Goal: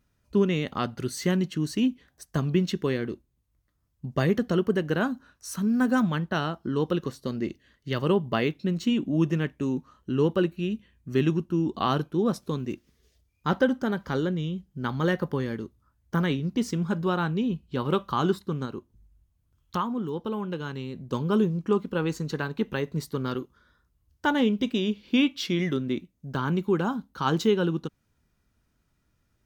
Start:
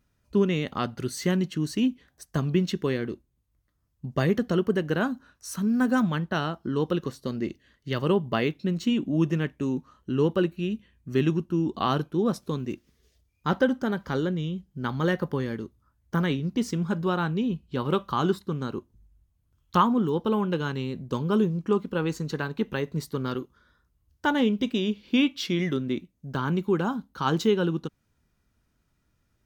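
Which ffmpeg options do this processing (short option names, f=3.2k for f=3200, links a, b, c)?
-filter_complex "[0:a]asettb=1/sr,asplit=3[a][b][c];[a]atrim=end=18.654[d];[b]atrim=start=18.65:end=21.13,asetpts=PTS-STARTPTS,afade=t=in:d=0.004:c=qsin,afade=t=out:st=2.476:d=0.004:c=qsin,acompressor=threshold=-38dB:ratio=1.5[e];[c]atrim=start=21.126[f];[d][e]acrossfade=d=0.004:c1=hsin:c2=qsin[g];[g][f]acrossfade=d=0.004:c1=qsin:c2=hsin"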